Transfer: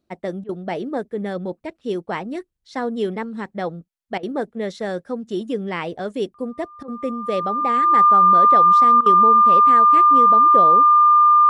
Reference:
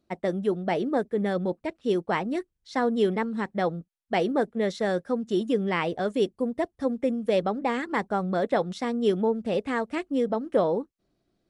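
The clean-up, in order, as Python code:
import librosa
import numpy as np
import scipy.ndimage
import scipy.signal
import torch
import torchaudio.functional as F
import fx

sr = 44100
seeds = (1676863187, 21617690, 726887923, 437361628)

y = fx.notch(x, sr, hz=1200.0, q=30.0)
y = fx.fix_interpolate(y, sr, at_s=(0.44, 4.18, 6.83, 9.01), length_ms=49.0)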